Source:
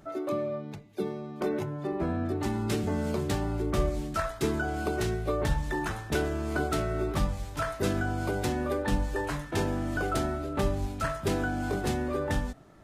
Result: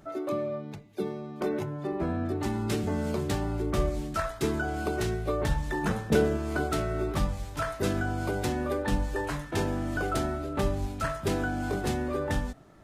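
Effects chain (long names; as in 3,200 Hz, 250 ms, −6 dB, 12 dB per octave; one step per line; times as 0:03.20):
0:05.83–0:06.36: hollow resonant body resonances 200/470 Hz, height 16 dB → 11 dB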